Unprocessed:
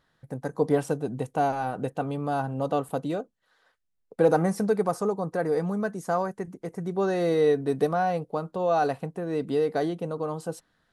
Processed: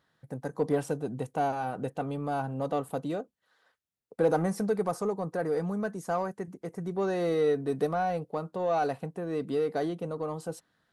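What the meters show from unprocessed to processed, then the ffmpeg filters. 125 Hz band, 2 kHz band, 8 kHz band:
−3.5 dB, −4.0 dB, −3.0 dB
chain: -filter_complex "[0:a]highpass=71,asplit=2[link_01][link_02];[link_02]asoftclip=type=tanh:threshold=-26.5dB,volume=-7.5dB[link_03];[link_01][link_03]amix=inputs=2:normalize=0,volume=-5.5dB"

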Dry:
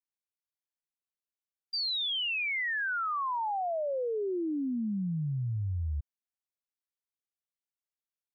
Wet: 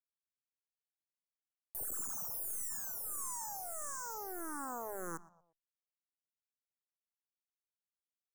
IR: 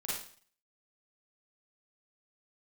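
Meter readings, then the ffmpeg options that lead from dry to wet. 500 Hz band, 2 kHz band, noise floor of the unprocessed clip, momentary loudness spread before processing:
−14.5 dB, −20.5 dB, below −85 dBFS, 5 LU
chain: -filter_complex "[0:a]acrossover=split=3100[link_01][link_02];[link_02]acompressor=threshold=-43dB:ratio=4:attack=1:release=60[link_03];[link_01][link_03]amix=inputs=2:normalize=0,highpass=230,agate=range=-33dB:threshold=-37dB:ratio=3:detection=peak,acompressor=threshold=-34dB:ratio=6,alimiter=level_in=17.5dB:limit=-24dB:level=0:latency=1:release=250,volume=-17.5dB,acrusher=bits=4:dc=4:mix=0:aa=0.000001,asuperstop=centerf=3100:order=8:qfactor=0.61,asplit=2[link_04][link_05];[link_05]adelay=118,lowpass=frequency=3800:poles=1,volume=-20dB,asplit=2[link_06][link_07];[link_07]adelay=118,lowpass=frequency=3800:poles=1,volume=0.41,asplit=2[link_08][link_09];[link_09]adelay=118,lowpass=frequency=3800:poles=1,volume=0.41[link_10];[link_04][link_06][link_08][link_10]amix=inputs=4:normalize=0,asplit=2[link_11][link_12];[link_12]afreqshift=-1.6[link_13];[link_11][link_13]amix=inputs=2:normalize=1,volume=13dB"

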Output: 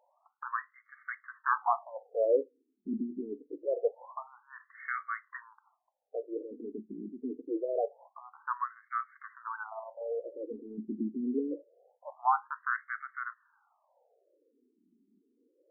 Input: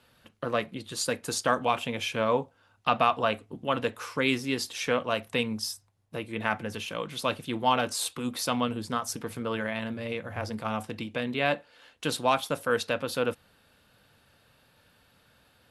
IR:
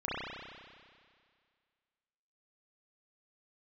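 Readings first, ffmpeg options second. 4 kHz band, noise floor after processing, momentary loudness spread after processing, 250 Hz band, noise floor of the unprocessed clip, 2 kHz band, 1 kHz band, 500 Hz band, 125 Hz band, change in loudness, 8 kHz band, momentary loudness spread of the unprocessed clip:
below −40 dB, −77 dBFS, 16 LU, −6.0 dB, −64 dBFS, −7.0 dB, −5.0 dB, −5.0 dB, below −20 dB, −6.0 dB, below −40 dB, 8 LU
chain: -af "aemphasis=mode=reproduction:type=bsi,afftfilt=real='re*between(b*sr/1024,290*pow(1600/290,0.5+0.5*sin(2*PI*0.25*pts/sr))/1.41,290*pow(1600/290,0.5+0.5*sin(2*PI*0.25*pts/sr))*1.41)':imag='im*between(b*sr/1024,290*pow(1600/290,0.5+0.5*sin(2*PI*0.25*pts/sr))/1.41,290*pow(1600/290,0.5+0.5*sin(2*PI*0.25*pts/sr))*1.41)':win_size=1024:overlap=0.75"

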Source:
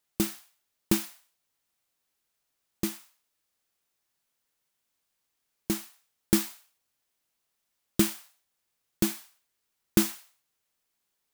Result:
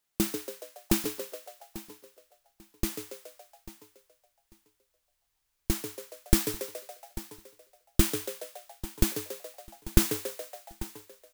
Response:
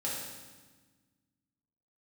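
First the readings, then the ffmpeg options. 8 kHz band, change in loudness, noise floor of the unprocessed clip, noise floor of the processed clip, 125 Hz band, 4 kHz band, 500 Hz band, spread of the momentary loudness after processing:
+1.0 dB, −2.5 dB, −80 dBFS, −78 dBFS, +3.5 dB, +1.0 dB, +2.0 dB, 20 LU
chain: -filter_complex "[0:a]asplit=2[link_01][link_02];[link_02]asplit=7[link_03][link_04][link_05][link_06][link_07][link_08][link_09];[link_03]adelay=140,afreqshift=97,volume=-8.5dB[link_10];[link_04]adelay=280,afreqshift=194,volume=-13.4dB[link_11];[link_05]adelay=420,afreqshift=291,volume=-18.3dB[link_12];[link_06]adelay=560,afreqshift=388,volume=-23.1dB[link_13];[link_07]adelay=700,afreqshift=485,volume=-28dB[link_14];[link_08]adelay=840,afreqshift=582,volume=-32.9dB[link_15];[link_09]adelay=980,afreqshift=679,volume=-37.8dB[link_16];[link_10][link_11][link_12][link_13][link_14][link_15][link_16]amix=inputs=7:normalize=0[link_17];[link_01][link_17]amix=inputs=2:normalize=0,asubboost=boost=11:cutoff=65,asplit=2[link_18][link_19];[link_19]aecho=0:1:843|1686:0.15|0.0314[link_20];[link_18][link_20]amix=inputs=2:normalize=0"

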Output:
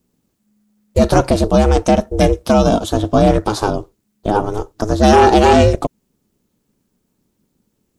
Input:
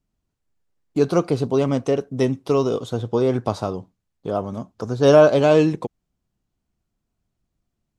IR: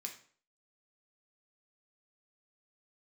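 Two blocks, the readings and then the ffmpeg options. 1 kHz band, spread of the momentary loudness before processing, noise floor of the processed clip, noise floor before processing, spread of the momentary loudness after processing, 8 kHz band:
+12.5 dB, 17 LU, −69 dBFS, −79 dBFS, 13 LU, can't be measured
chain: -af "highshelf=frequency=7100:gain=10.5,apsyclip=14dB,aeval=exprs='val(0)*sin(2*PI*210*n/s)':channel_layout=same,volume=-2dB"

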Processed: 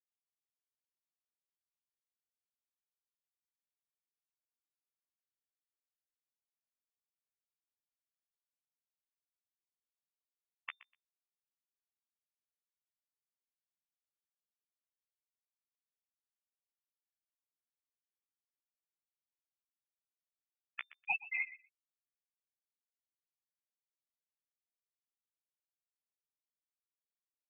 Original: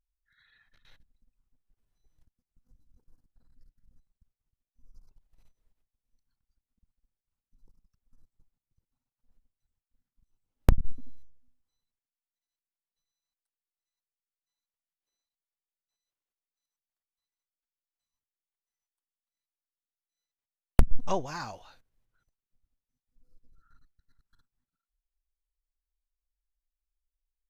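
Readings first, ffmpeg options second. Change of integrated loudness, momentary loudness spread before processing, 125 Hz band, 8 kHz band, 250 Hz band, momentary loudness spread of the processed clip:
−8.0 dB, 14 LU, below −40 dB, can't be measured, below −40 dB, 17 LU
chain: -filter_complex "[0:a]highpass=frequency=1100:width=0.5412,highpass=frequency=1100:width=1.3066,aemphasis=mode=production:type=riaa,afftfilt=real='re*gte(hypot(re,im),0.0501)':imag='im*gte(hypot(re,im),0.0501)':win_size=1024:overlap=0.75,acompressor=threshold=-36dB:ratio=16,asplit=2[link_01][link_02];[link_02]adelay=123,lowpass=frequency=1600:poles=1,volume=-15dB,asplit=2[link_03][link_04];[link_04]adelay=123,lowpass=frequency=1600:poles=1,volume=0.2[link_05];[link_01][link_03][link_05]amix=inputs=3:normalize=0,flanger=delay=8.5:depth=6.9:regen=5:speed=1.8:shape=sinusoidal,lowpass=frequency=3100:width_type=q:width=0.5098,lowpass=frequency=3100:width_type=q:width=0.6013,lowpass=frequency=3100:width_type=q:width=0.9,lowpass=frequency=3100:width_type=q:width=2.563,afreqshift=-3600,volume=12.5dB"

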